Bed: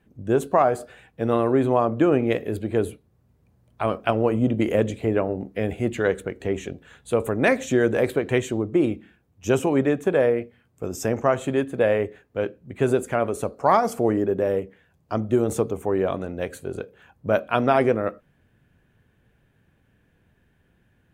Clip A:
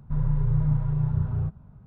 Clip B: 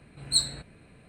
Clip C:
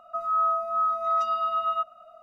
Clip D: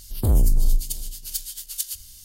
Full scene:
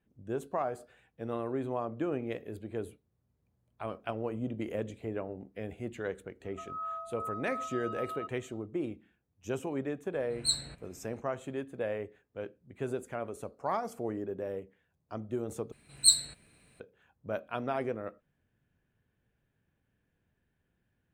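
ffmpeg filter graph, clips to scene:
ffmpeg -i bed.wav -i cue0.wav -i cue1.wav -i cue2.wav -filter_complex "[2:a]asplit=2[link_01][link_02];[0:a]volume=-14.5dB[link_03];[link_02]crystalizer=i=5:c=0[link_04];[link_03]asplit=2[link_05][link_06];[link_05]atrim=end=15.724[link_07];[link_04]atrim=end=1.08,asetpts=PTS-STARTPTS,volume=-11dB[link_08];[link_06]atrim=start=16.796[link_09];[3:a]atrim=end=2.22,asetpts=PTS-STARTPTS,volume=-14.5dB,afade=type=in:duration=0.004:curve=hsin,afade=type=out:start_time=2.216:duration=0.004:curve=hsin,adelay=6440[link_10];[link_01]atrim=end=1.08,asetpts=PTS-STARTPTS,volume=-5.5dB,afade=type=in:duration=0.004:curve=hsin,afade=type=out:start_time=1.076:duration=0.004:curve=hsin,adelay=10130[link_11];[link_07][link_08]acrossfade=duration=0.004:curve1=hsin:curve2=hsin[link_12];[link_12][link_09]acrossfade=duration=0.004:curve1=hsin:curve2=hsin[link_13];[link_13][link_10][link_11]amix=inputs=3:normalize=0" out.wav

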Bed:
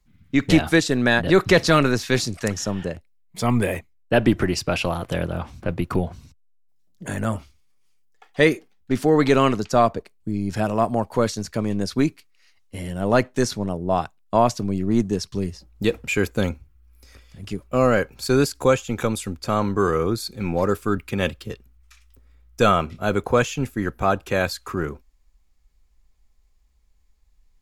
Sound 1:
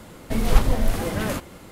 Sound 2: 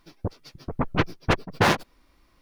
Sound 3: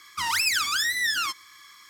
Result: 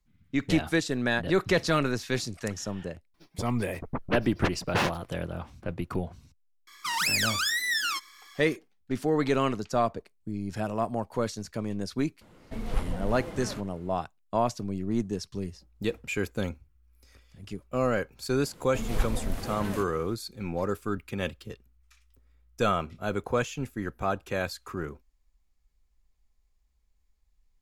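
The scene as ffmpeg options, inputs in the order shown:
ffmpeg -i bed.wav -i cue0.wav -i cue1.wav -i cue2.wav -filter_complex "[1:a]asplit=2[link_01][link_02];[0:a]volume=-8.5dB[link_03];[3:a]highpass=190[link_04];[link_01]lowpass=frequency=3600:poles=1[link_05];[2:a]atrim=end=2.41,asetpts=PTS-STARTPTS,volume=-7dB,afade=type=in:duration=0.004:curve=hsin,afade=type=out:start_time=2.406:duration=0.004:curve=hsin,adelay=3140[link_06];[link_04]atrim=end=1.89,asetpts=PTS-STARTPTS,volume=-2.5dB,afade=type=in:duration=0.004:curve=hsin,afade=type=out:start_time=1.886:duration=0.004:curve=hsin,adelay=6670[link_07];[link_05]atrim=end=1.71,asetpts=PTS-STARTPTS,volume=-12dB,afade=type=in:duration=0.004:curve=hsin,afade=type=out:start_time=1.706:duration=0.004:curve=hsin,adelay=12210[link_08];[link_02]atrim=end=1.71,asetpts=PTS-STARTPTS,volume=-10.5dB,afade=type=in:duration=0.004:curve=hsin,afade=type=out:start_time=1.706:duration=0.004:curve=hsin,adelay=813204S[link_09];[link_03][link_06][link_07][link_08][link_09]amix=inputs=5:normalize=0" out.wav

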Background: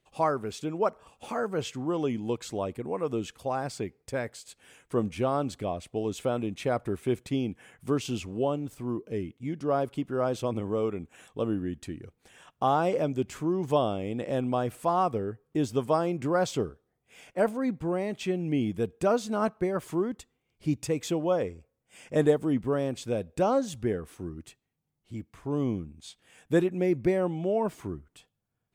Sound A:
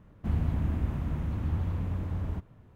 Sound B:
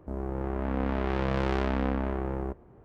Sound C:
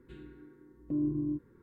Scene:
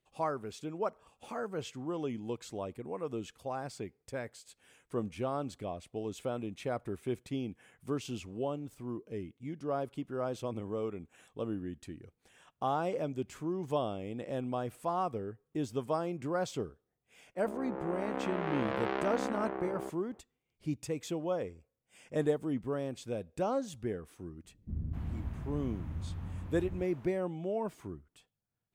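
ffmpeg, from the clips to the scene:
ffmpeg -i bed.wav -i cue0.wav -i cue1.wav -filter_complex "[0:a]volume=-7.5dB[link_01];[2:a]highpass=310,lowpass=3700[link_02];[1:a]acrossover=split=420[link_03][link_04];[link_04]adelay=260[link_05];[link_03][link_05]amix=inputs=2:normalize=0[link_06];[link_02]atrim=end=2.84,asetpts=PTS-STARTPTS,volume=-3dB,afade=type=in:duration=0.004:curve=hsin,afade=type=out:start_time=2.836:duration=0.004:curve=hsin,adelay=17370[link_07];[link_06]atrim=end=2.75,asetpts=PTS-STARTPTS,volume=-9dB,afade=type=in:duration=0.02,afade=type=out:start_time=2.73:duration=0.02,adelay=24430[link_08];[link_01][link_07][link_08]amix=inputs=3:normalize=0" out.wav

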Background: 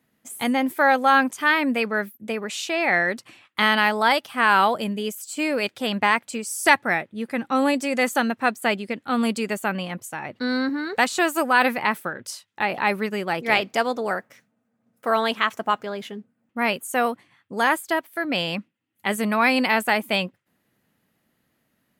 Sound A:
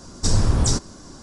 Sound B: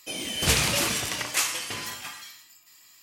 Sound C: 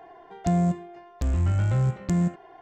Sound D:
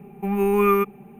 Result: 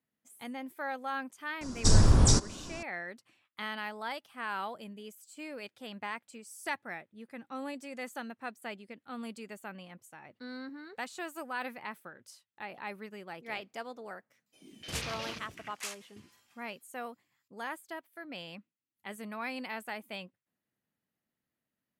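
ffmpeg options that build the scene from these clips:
ffmpeg -i bed.wav -i cue0.wav -i cue1.wav -filter_complex "[0:a]volume=-19dB[link_01];[2:a]afwtdn=0.0316[link_02];[1:a]atrim=end=1.22,asetpts=PTS-STARTPTS,volume=-2.5dB,afade=type=in:duration=0.004:curve=hsin,afade=type=out:start_time=1.216:duration=0.004:curve=hsin,adelay=1610[link_03];[link_02]atrim=end=3.02,asetpts=PTS-STARTPTS,volume=-14dB,afade=type=in:duration=0.004:curve=hsin,afade=type=out:start_time=3.016:duration=0.004:curve=hsin,adelay=14460[link_04];[link_01][link_03][link_04]amix=inputs=3:normalize=0" out.wav

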